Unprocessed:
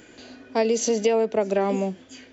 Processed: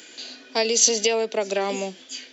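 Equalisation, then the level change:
high-pass filter 250 Hz 12 dB per octave
parametric band 4,000 Hz +12.5 dB 1.8 octaves
high-shelf EQ 5,700 Hz +10.5 dB
−2.5 dB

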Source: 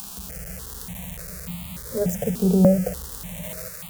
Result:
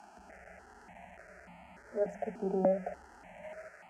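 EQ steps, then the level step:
resonant band-pass 850 Hz, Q 0.92
high-frequency loss of the air 88 metres
phaser with its sweep stopped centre 740 Hz, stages 8
0.0 dB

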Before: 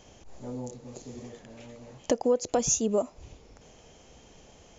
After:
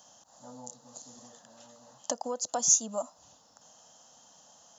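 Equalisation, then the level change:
high-pass filter 210 Hz 12 dB per octave
spectral tilt +2 dB per octave
phaser with its sweep stopped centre 950 Hz, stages 4
0.0 dB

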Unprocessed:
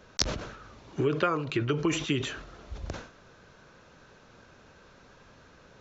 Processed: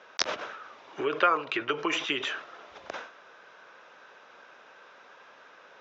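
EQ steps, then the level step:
band-pass filter 660–7,200 Hz
high-frequency loss of the air 140 metres
notch filter 4,300 Hz, Q 9.3
+7.0 dB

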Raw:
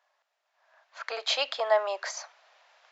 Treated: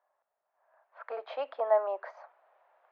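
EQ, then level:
low-pass filter 1,000 Hz 12 dB per octave
high-frequency loss of the air 130 metres
0.0 dB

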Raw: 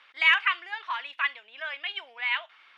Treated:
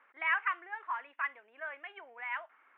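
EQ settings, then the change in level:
low-pass filter 1,900 Hz 24 dB per octave
high-frequency loss of the air 180 metres
parametric band 310 Hz +5 dB 1.9 octaves
−4.0 dB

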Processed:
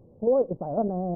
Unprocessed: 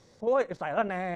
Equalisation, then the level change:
Gaussian smoothing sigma 14 samples
+8.5 dB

